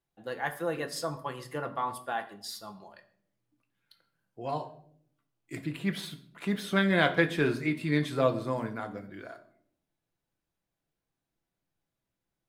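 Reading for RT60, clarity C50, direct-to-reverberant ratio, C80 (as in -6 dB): 0.60 s, 13.5 dB, 5.5 dB, 16.5 dB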